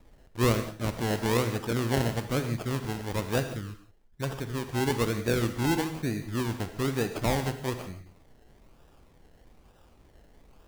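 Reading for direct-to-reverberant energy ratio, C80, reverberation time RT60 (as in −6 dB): 8.0 dB, 11.0 dB, non-exponential decay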